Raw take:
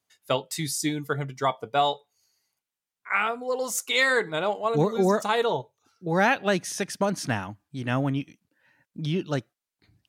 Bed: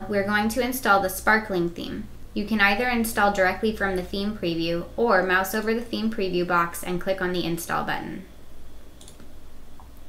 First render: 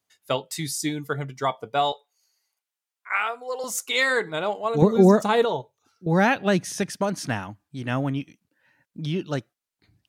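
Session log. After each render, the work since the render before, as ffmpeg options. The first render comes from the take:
-filter_complex "[0:a]asettb=1/sr,asplit=3[s0][s1][s2];[s0]atrim=end=1.924[s3];[s1]atrim=start=1.92:end=3.64,asetpts=PTS-STARTPTS,afade=t=in:d=0.004:c=qsin,afade=t=out:st=1.716:d=0.004:c=qsin,highpass=510[s4];[s2]atrim=start=3.636[s5];[s3][s4]acrossfade=d=0.004:c1=hsin:c2=qsin[s6];[s6][s5]acrossfade=d=0.004:c1=qsin:c2=hsin,asettb=1/sr,asplit=3[s7][s8][s9];[s7]atrim=end=4.824[s10];[s8]atrim=start=4.82:end=5.45,asetpts=PTS-STARTPTS,afade=t=in:d=0.004:c=qsin,afade=t=out:st=0.626:d=0.004:c=qsin,lowshelf=f=440:g=11.5[s11];[s9]atrim=start=5.446[s12];[s10][s11]acrossfade=d=0.004:c1=hsin:c2=qsin[s13];[s13][s12]acrossfade=d=0.004:c1=qsin:c2=hsin,asettb=1/sr,asplit=3[s14][s15][s16];[s14]atrim=end=6.064[s17];[s15]atrim=start=6.06:end=6.9,asetpts=PTS-STARTPTS,afade=t=in:d=0.004:c=qsin,afade=t=out:st=0.836:d=0.004:c=qsin,lowshelf=f=220:g=10.5[s18];[s16]atrim=start=6.896[s19];[s17][s18]acrossfade=d=0.004:c1=hsin:c2=qsin[s20];[s20][s19]acrossfade=d=0.004:c1=qsin:c2=hsin"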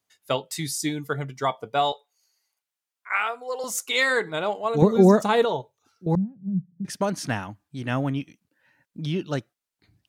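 -filter_complex "[0:a]asettb=1/sr,asplit=3[s0][s1][s2];[s0]atrim=end=6.154[s3];[s1]atrim=start=6.15:end=6.85,asetpts=PTS-STARTPTS,afade=t=in:d=0.004:c=qsin,afade=t=out:st=0.696:d=0.004:c=qsin,asuperpass=centerf=170:order=4:qfactor=3[s4];[s2]atrim=start=6.846[s5];[s3][s4]acrossfade=d=0.004:c1=hsin:c2=qsin[s6];[s6][s5]acrossfade=d=0.004:c1=qsin:c2=hsin"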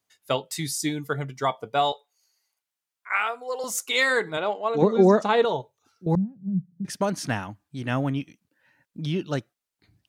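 -filter_complex "[0:a]asettb=1/sr,asplit=3[s0][s1][s2];[s0]atrim=end=4.374[s3];[s1]atrim=start=4.37:end=5.45,asetpts=PTS-STARTPTS,afade=t=in:d=0.004:c=qsin,afade=t=out:st=1.076:d=0.004:c=qsin,highpass=220,lowpass=5000[s4];[s2]atrim=start=5.446[s5];[s3][s4]acrossfade=d=0.004:c1=hsin:c2=qsin[s6];[s6][s5]acrossfade=d=0.004:c1=qsin:c2=hsin"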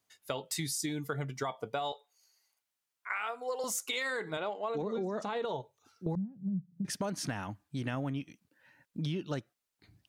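-af "alimiter=limit=0.133:level=0:latency=1:release=37,acompressor=threshold=0.0251:ratio=6"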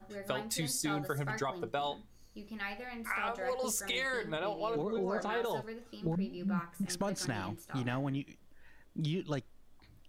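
-filter_complex "[1:a]volume=0.0944[s0];[0:a][s0]amix=inputs=2:normalize=0"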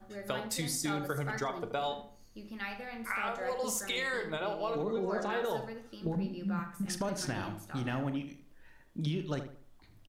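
-filter_complex "[0:a]asplit=2[s0][s1];[s1]adelay=40,volume=0.224[s2];[s0][s2]amix=inputs=2:normalize=0,asplit=2[s3][s4];[s4]adelay=78,lowpass=f=2500:p=1,volume=0.355,asplit=2[s5][s6];[s6]adelay=78,lowpass=f=2500:p=1,volume=0.36,asplit=2[s7][s8];[s8]adelay=78,lowpass=f=2500:p=1,volume=0.36,asplit=2[s9][s10];[s10]adelay=78,lowpass=f=2500:p=1,volume=0.36[s11];[s3][s5][s7][s9][s11]amix=inputs=5:normalize=0"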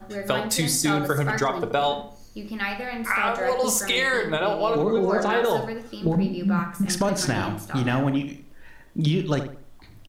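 -af "volume=3.76"

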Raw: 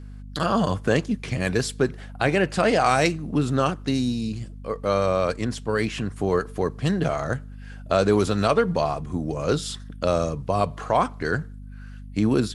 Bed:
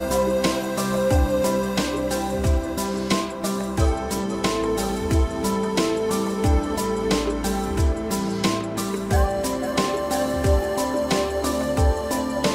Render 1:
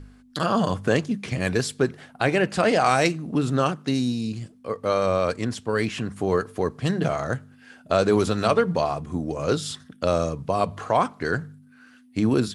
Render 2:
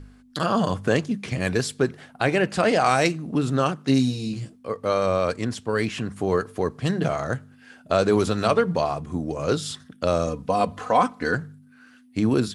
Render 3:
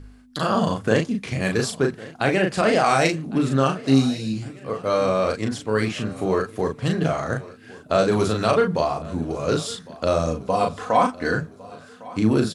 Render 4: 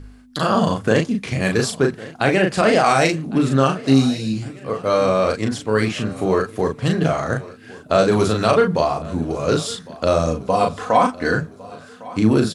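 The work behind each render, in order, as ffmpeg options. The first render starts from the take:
-af "bandreject=f=50:t=h:w=4,bandreject=f=100:t=h:w=4,bandreject=f=150:t=h:w=4,bandreject=f=200:t=h:w=4"
-filter_complex "[0:a]asettb=1/sr,asplit=3[s0][s1][s2];[s0]atrim=end=3.874[s3];[s1]atrim=start=3.87:end=4.56,asetpts=PTS-STARTPTS,afade=t=in:d=0.004:c=qsin,afade=t=out:st=0.686:d=0.004:c=qsin,asplit=2[s4][s5];[s5]adelay=15,volume=0.794[s6];[s4][s6]amix=inputs=2:normalize=0,atrim=end_sample=30429[s7];[s2]atrim=start=4.556[s8];[s3][s7]acrossfade=d=0.004:c1=hsin:c2=qsin[s9];[s9][s8]acrossfade=d=0.004:c1=qsin:c2=hsin,asettb=1/sr,asplit=3[s10][s11][s12];[s10]atrim=end=10.274[s13];[s11]atrim=start=10.27:end=11.35,asetpts=PTS-STARTPTS,afade=t=in:d=0.004:c=qsin,afade=t=out:st=1.076:d=0.004:c=qsin,aecho=1:1:4:0.67,atrim=end_sample=47628[s14];[s12]atrim=start=11.346[s15];[s13][s14]acrossfade=d=0.004:c1=hsin:c2=qsin[s16];[s16][s15]acrossfade=d=0.004:c1=qsin:c2=hsin"
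-filter_complex "[0:a]asplit=2[s0][s1];[s1]adelay=37,volume=0.631[s2];[s0][s2]amix=inputs=2:normalize=0,aecho=1:1:1106|2212|3318|4424:0.0944|0.05|0.0265|0.0141"
-af "volume=1.5,alimiter=limit=0.708:level=0:latency=1"

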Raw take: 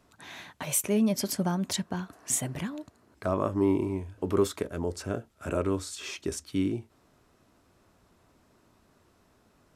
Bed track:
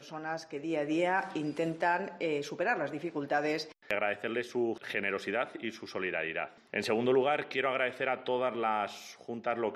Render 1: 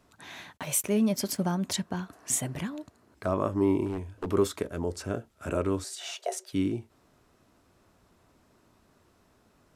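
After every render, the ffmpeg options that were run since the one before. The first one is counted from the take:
-filter_complex "[0:a]asplit=3[s0][s1][s2];[s0]afade=t=out:st=0.56:d=0.02[s3];[s1]aeval=exprs='sgn(val(0))*max(abs(val(0))-0.002,0)':c=same,afade=t=in:st=0.56:d=0.02,afade=t=out:st=1.49:d=0.02[s4];[s2]afade=t=in:st=1.49:d=0.02[s5];[s3][s4][s5]amix=inputs=3:normalize=0,asettb=1/sr,asplit=3[s6][s7][s8];[s6]atrim=end=3.864[s9];[s7]atrim=start=3.86:end=4.28,asetpts=PTS-STARTPTS,afade=t=in:d=0.004:c=qsin,afade=t=out:st=0.416:d=0.004:c=qsin,aeval=exprs='0.0531*(abs(mod(val(0)/0.0531+3,4)-2)-1)':c=same[s10];[s8]atrim=start=4.276[s11];[s9][s10]acrossfade=d=0.004:c1=hsin:c2=qsin[s12];[s12][s11]acrossfade=d=0.004:c1=qsin:c2=hsin,asettb=1/sr,asplit=3[s13][s14][s15];[s13]atrim=end=5.844[s16];[s14]atrim=start=5.84:end=6.53,asetpts=PTS-STARTPTS,afade=t=in:d=0.004:c=qsin,afade=t=out:st=0.686:d=0.004:c=qsin,afreqshift=300[s17];[s15]atrim=start=6.526[s18];[s16][s17]acrossfade=d=0.004:c1=hsin:c2=qsin[s19];[s19][s18]acrossfade=d=0.004:c1=qsin:c2=hsin"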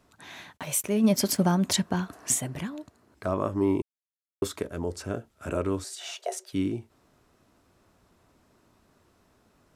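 -filter_complex "[0:a]asplit=3[s0][s1][s2];[s0]afade=t=out:st=1.03:d=0.02[s3];[s1]acontrast=38,afade=t=in:st=1.03:d=0.02,afade=t=out:st=2.32:d=0.02[s4];[s2]afade=t=in:st=2.32:d=0.02[s5];[s3][s4][s5]amix=inputs=3:normalize=0,asplit=3[s6][s7][s8];[s6]atrim=end=3.82,asetpts=PTS-STARTPTS,afade=t=out:st=3.816:d=0.004:c=hsin[s9];[s7]atrim=start=3.82:end=4.42,asetpts=PTS-STARTPTS,volume=0[s10];[s8]atrim=start=4.42,asetpts=PTS-STARTPTS,afade=t=in:d=0.004:c=hsin[s11];[s9][s10][s11]concat=n=3:v=0:a=1"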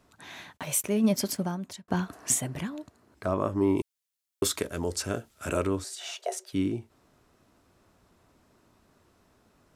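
-filter_complex "[0:a]asplit=3[s0][s1][s2];[s0]afade=t=out:st=3.76:d=0.02[s3];[s1]highshelf=f=2000:g=10.5,afade=t=in:st=3.76:d=0.02,afade=t=out:st=5.66:d=0.02[s4];[s2]afade=t=in:st=5.66:d=0.02[s5];[s3][s4][s5]amix=inputs=3:normalize=0,asplit=2[s6][s7];[s6]atrim=end=1.88,asetpts=PTS-STARTPTS,afade=t=out:st=0.85:d=1.03[s8];[s7]atrim=start=1.88,asetpts=PTS-STARTPTS,afade=t=in:d=0.004:c=hsin[s9];[s8][s9]concat=n=2:v=0:a=1"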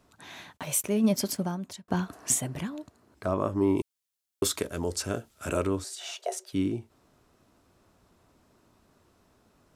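-af "equalizer=f=1900:t=o:w=0.77:g=-2"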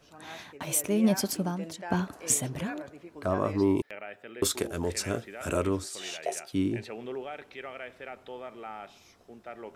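-filter_complex "[1:a]volume=0.299[s0];[0:a][s0]amix=inputs=2:normalize=0"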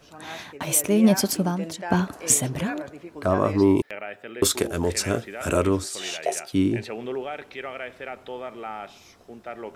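-af "volume=2.11"

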